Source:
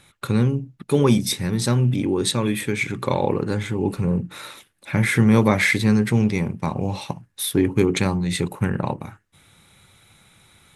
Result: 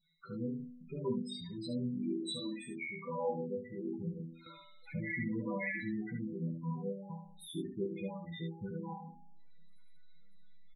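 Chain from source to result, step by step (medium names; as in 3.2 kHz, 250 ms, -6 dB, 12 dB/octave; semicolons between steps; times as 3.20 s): in parallel at -9.5 dB: hysteresis with a dead band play -29 dBFS; on the sum: chord resonator E3 minor, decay 0.75 s; loudest bins only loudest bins 8; early reflections 18 ms -11.5 dB, 70 ms -6.5 dB; 4.46–5.80 s: three bands compressed up and down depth 40%; trim +3 dB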